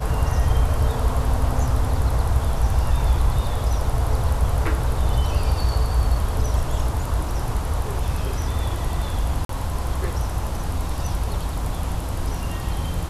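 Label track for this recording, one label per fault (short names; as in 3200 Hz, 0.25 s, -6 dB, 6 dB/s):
9.450000	9.490000	gap 43 ms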